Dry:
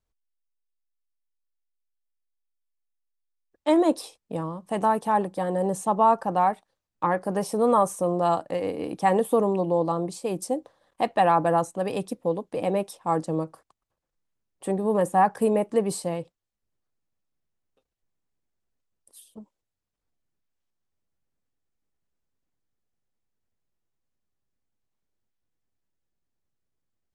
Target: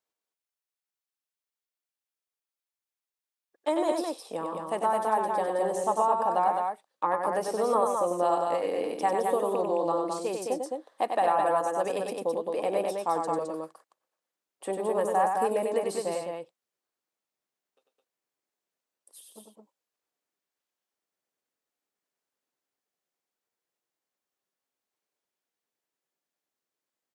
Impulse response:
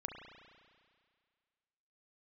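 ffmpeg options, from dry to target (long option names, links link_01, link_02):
-filter_complex "[0:a]acrossover=split=1500|7300[link_01][link_02][link_03];[link_01]acompressor=threshold=-22dB:ratio=4[link_04];[link_02]acompressor=threshold=-44dB:ratio=4[link_05];[link_03]acompressor=threshold=-49dB:ratio=4[link_06];[link_04][link_05][link_06]amix=inputs=3:normalize=0,highpass=400,aecho=1:1:96.21|212.8:0.562|0.631"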